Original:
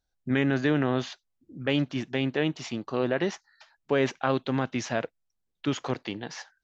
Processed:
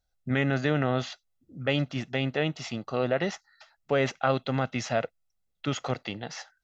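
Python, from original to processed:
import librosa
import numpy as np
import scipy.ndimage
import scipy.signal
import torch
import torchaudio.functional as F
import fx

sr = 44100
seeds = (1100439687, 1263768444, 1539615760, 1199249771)

y = x + 0.47 * np.pad(x, (int(1.5 * sr / 1000.0), 0))[:len(x)]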